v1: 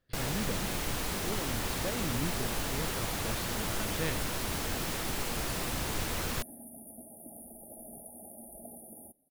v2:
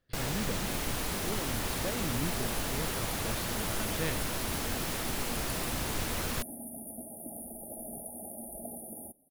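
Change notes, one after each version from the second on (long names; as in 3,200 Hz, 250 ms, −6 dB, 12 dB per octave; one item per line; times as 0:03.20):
second sound +5.5 dB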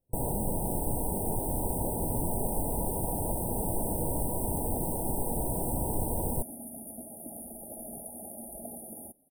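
speech −3.5 dB
first sound +4.5 dB
master: add linear-phase brick-wall band-stop 990–8,000 Hz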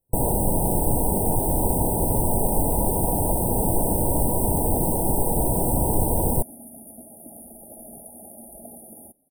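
first sound +9.5 dB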